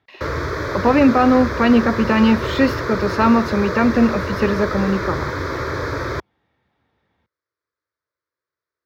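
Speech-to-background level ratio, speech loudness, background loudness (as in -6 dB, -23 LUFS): 7.0 dB, -17.5 LUFS, -24.5 LUFS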